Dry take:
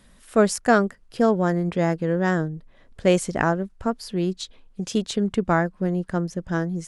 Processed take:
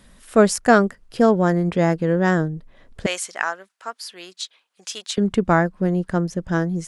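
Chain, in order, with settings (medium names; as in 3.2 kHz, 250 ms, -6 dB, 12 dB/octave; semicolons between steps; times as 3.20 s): 3.06–5.18 s: high-pass 1.2 kHz 12 dB/octave; trim +3.5 dB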